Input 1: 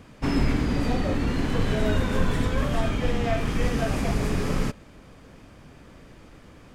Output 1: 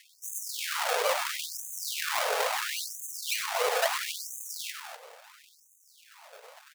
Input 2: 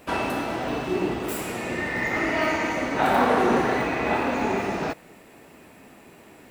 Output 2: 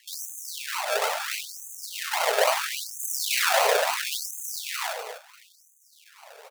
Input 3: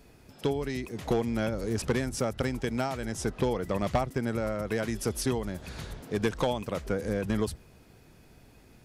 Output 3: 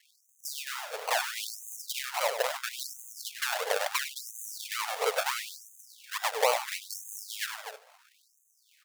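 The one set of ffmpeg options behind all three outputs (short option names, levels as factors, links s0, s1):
-af "highshelf=f=4300:g=8,acrusher=samples=35:mix=1:aa=0.000001:lfo=1:lforange=21:lforate=3.5,aecho=1:1:99.13|247.8:0.355|0.282,afftfilt=real='re*gte(b*sr/1024,410*pow(6200/410,0.5+0.5*sin(2*PI*0.74*pts/sr)))':imag='im*gte(b*sr/1024,410*pow(6200/410,0.5+0.5*sin(2*PI*0.74*pts/sr)))':win_size=1024:overlap=0.75,volume=1.5"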